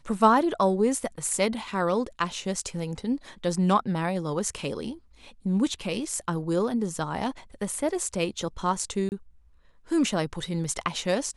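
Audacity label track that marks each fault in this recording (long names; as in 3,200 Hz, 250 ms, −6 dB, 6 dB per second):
9.090000	9.120000	drop-out 29 ms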